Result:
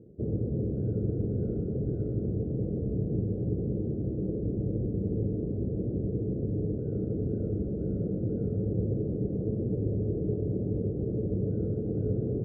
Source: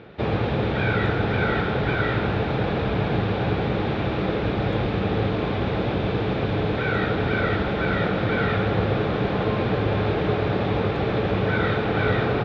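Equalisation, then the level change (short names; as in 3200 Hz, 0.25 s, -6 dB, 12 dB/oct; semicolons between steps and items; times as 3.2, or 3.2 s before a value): inverse Chebyshev low-pass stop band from 880 Hz, stop band 40 dB; air absorption 210 m; -5.0 dB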